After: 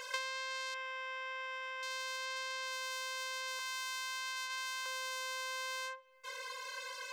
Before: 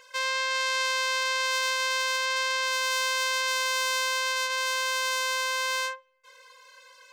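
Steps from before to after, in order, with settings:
0:03.59–0:04.86: high-pass filter 770 Hz 24 dB per octave
downward compressor 16 to 1, threshold −43 dBFS, peak gain reduction 22.5 dB
0:00.74–0:01.83: Savitzky-Golay smoothing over 25 samples
level +8 dB

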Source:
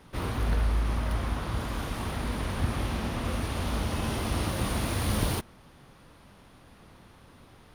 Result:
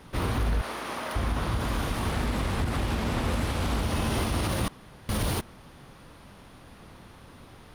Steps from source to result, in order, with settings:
0:00.61–0:01.16: high-pass filter 390 Hz 12 dB per octave
brickwall limiter −23 dBFS, peak gain reduction 9 dB
0:02.09–0:03.82: highs frequency-modulated by the lows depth 0.49 ms
0:04.68–0:05.09: fill with room tone
level +4.5 dB

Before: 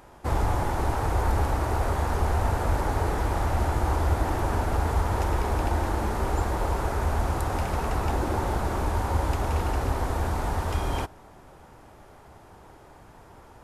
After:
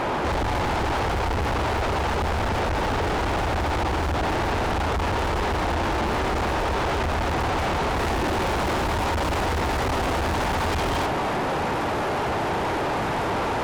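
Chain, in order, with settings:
low-shelf EQ 420 Hz +11 dB
mid-hump overdrive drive 42 dB, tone 4,700 Hz, clips at −12 dBFS
high-shelf EQ 4,100 Hz −11.5 dB, from 0:07.98 −6.5 dB
soft clipping −22 dBFS, distortion −9 dB

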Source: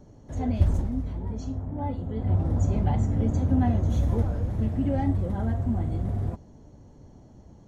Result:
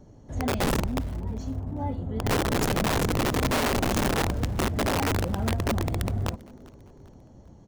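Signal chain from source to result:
wrap-around overflow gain 19.5 dB
echo with shifted repeats 397 ms, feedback 40%, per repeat +150 Hz, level −23.5 dB

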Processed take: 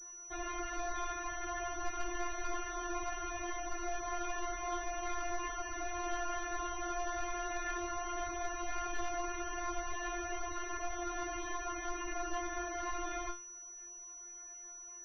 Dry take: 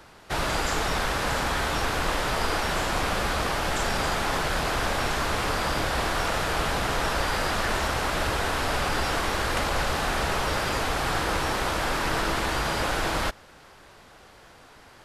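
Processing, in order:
tuned comb filter 350 Hz, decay 0.3 s, harmonics all, mix 100%
spectral peaks only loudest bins 32
switching amplifier with a slow clock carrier 5,900 Hz
level +3 dB

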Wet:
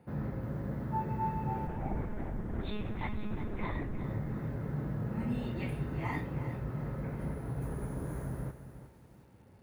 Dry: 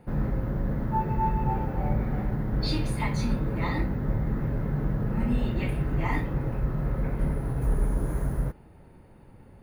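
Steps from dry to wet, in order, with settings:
high-pass filter 64 Hz 24 dB per octave
0:01.67–0:04.04: one-pitch LPC vocoder at 8 kHz 210 Hz
feedback echo at a low word length 358 ms, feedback 35%, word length 9 bits, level −11.5 dB
level −7 dB

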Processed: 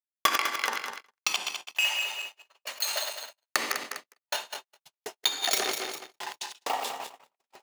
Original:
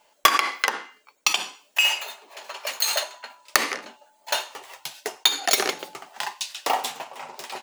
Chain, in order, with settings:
feedback delay that plays each chunk backwards 101 ms, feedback 70%, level −5.5 dB
noise gate −30 dBFS, range −58 dB
level −7 dB

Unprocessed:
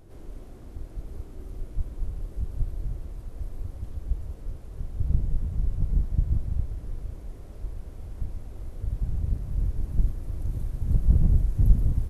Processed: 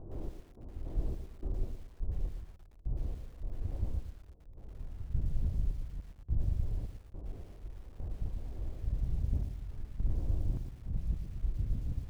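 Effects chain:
adaptive Wiener filter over 9 samples
low-pass filter 1,000 Hz 24 dB per octave
reversed playback
downward compressor 20 to 1, threshold −30 dBFS, peak gain reduction 21.5 dB
reversed playback
sample-and-hold tremolo, depth 95%
feedback echo at a low word length 114 ms, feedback 35%, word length 10 bits, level −8 dB
level +4.5 dB

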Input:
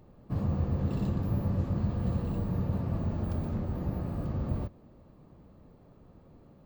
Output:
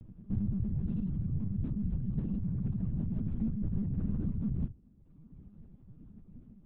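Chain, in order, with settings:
drawn EQ curve 220 Hz 0 dB, 610 Hz −22 dB, 2,100 Hz −16 dB
on a send at −12 dB: convolution reverb RT60 0.40 s, pre-delay 4 ms
on the sum: dynamic equaliser 250 Hz, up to +3 dB, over −49 dBFS, Q 5.5
in parallel at +2.5 dB: compressor whose output falls as the input rises −34 dBFS, ratio −0.5
on the sum: reverb reduction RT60 1.3 s
linear-prediction vocoder at 8 kHz pitch kept
level −3.5 dB

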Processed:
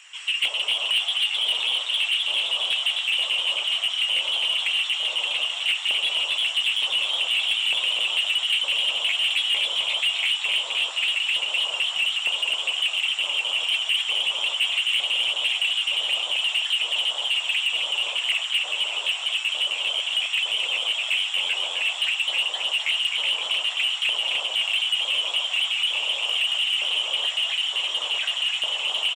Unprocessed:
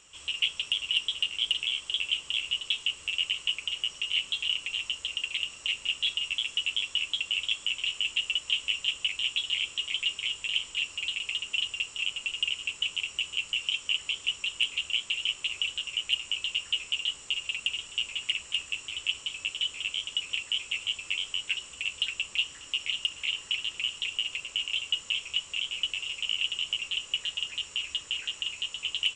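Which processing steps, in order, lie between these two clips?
spectral magnitudes quantised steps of 15 dB
flat-topped bell 3,200 Hz −10.5 dB 3 octaves
auto-filter high-pass square 1.1 Hz 620–1,900 Hz
on a send: echo with shifted repeats 260 ms, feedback 59%, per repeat +110 Hz, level −5 dB
on the sum: mid-hump overdrive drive 28 dB, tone 2,500 Hz, clips at −9 dBFS

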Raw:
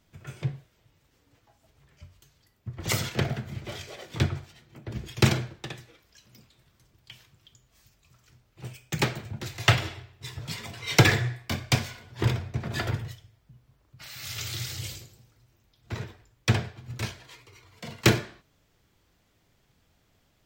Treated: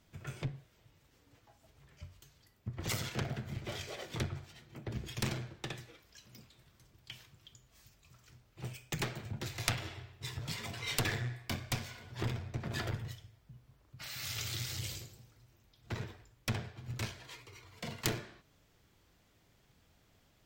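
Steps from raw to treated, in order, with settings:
downward compressor 2 to 1, threshold −37 dBFS, peak gain reduction 14 dB
harmonic generator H 3 −6 dB, 6 −25 dB, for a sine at −13 dBFS
level +5 dB

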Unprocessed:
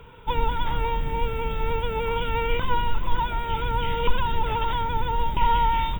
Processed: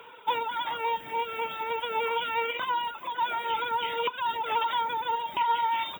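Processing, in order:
downward compressor 4 to 1, threshold −21 dBFS, peak gain reduction 8.5 dB
high-pass filter 520 Hz 12 dB per octave
convolution reverb RT60 0.60 s, pre-delay 32 ms, DRR 14 dB
reverb reduction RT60 1.1 s
level +3.5 dB

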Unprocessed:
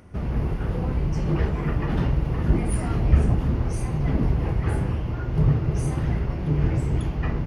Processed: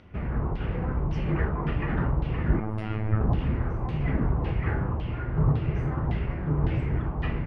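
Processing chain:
0:02.60–0:03.21: phases set to zero 108 Hz
auto-filter low-pass saw down 1.8 Hz 930–3,600 Hz
level −3.5 dB

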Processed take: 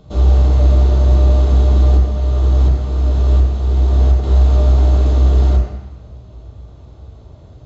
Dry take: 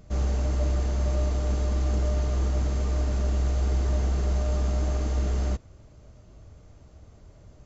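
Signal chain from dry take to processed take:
0:01.97–0:04.24: shaped tremolo saw up 1.4 Hz, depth 65%
convolution reverb RT60 1.1 s, pre-delay 15 ms, DRR −1.5 dB

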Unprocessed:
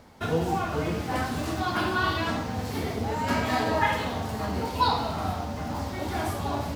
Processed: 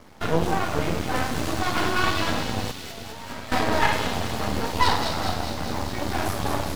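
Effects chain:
0:02.71–0:03.52: tuned comb filter 680 Hz, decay 0.36 s, mix 80%
half-wave rectification
delay with a high-pass on its return 205 ms, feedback 70%, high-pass 3,200 Hz, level −3.5 dB
level +7 dB

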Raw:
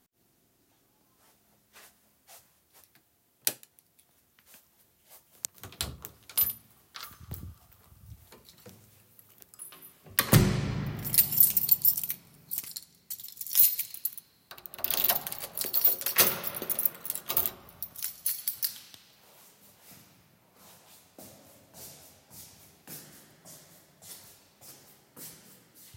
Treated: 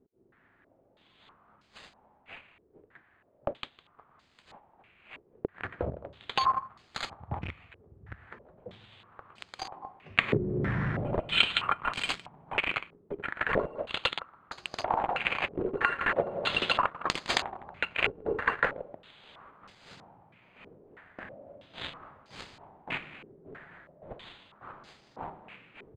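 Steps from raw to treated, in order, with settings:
on a send: single-tap delay 160 ms −20 dB
on the sum: bad sample-rate conversion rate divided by 8×, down none, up hold
in parallel at −9.5 dB: log-companded quantiser 2 bits
on the sum: downward compressor 8 to 1, threshold −26 dBFS, peak gain reduction 17 dB
low-pass on a step sequencer 3.1 Hz 410–5,100 Hz

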